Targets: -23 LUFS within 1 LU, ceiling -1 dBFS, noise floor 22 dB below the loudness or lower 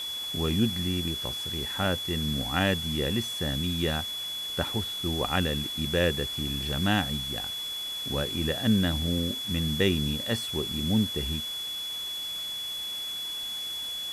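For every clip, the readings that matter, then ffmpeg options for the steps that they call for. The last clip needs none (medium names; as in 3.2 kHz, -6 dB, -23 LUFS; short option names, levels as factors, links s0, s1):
steady tone 3.4 kHz; tone level -32 dBFS; noise floor -35 dBFS; noise floor target -51 dBFS; loudness -28.5 LUFS; peak level -9.5 dBFS; loudness target -23.0 LUFS
-> -af "bandreject=f=3400:w=30"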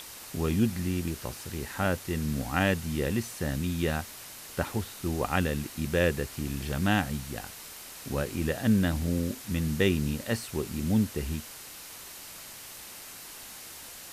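steady tone not found; noise floor -45 dBFS; noise floor target -52 dBFS
-> -af "afftdn=nr=7:nf=-45"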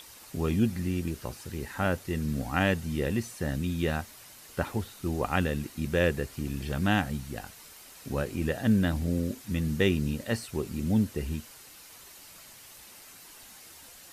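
noise floor -51 dBFS; noise floor target -52 dBFS
-> -af "afftdn=nr=6:nf=-51"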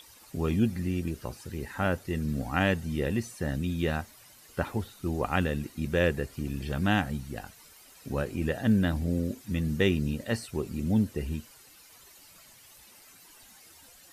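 noise floor -55 dBFS; loudness -30.0 LUFS; peak level -9.5 dBFS; loudness target -23.0 LUFS
-> -af "volume=2.24"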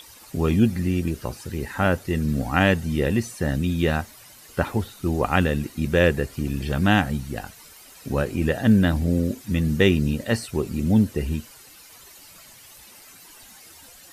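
loudness -23.0 LUFS; peak level -2.5 dBFS; noise floor -48 dBFS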